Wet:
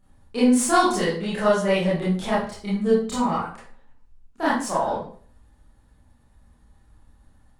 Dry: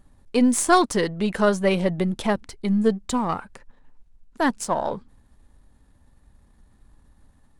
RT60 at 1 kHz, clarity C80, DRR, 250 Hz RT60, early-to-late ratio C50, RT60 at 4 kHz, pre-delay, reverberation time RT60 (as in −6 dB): 0.45 s, 8.0 dB, −10.0 dB, 0.40 s, 2.0 dB, 0.35 s, 23 ms, 0.45 s